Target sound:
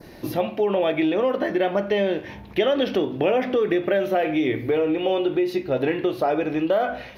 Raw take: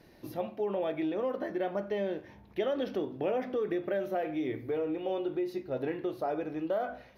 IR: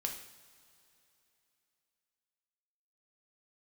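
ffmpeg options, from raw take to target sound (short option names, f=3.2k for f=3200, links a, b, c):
-filter_complex "[0:a]asplit=2[a][b];[b]acompressor=threshold=-38dB:ratio=6,volume=2.5dB[c];[a][c]amix=inputs=2:normalize=0,adynamicequalizer=threshold=0.00178:dfrequency=2800:dqfactor=1.3:tfrequency=2800:tqfactor=1.3:attack=5:release=100:ratio=0.375:range=3.5:mode=boostabove:tftype=bell,volume=7dB"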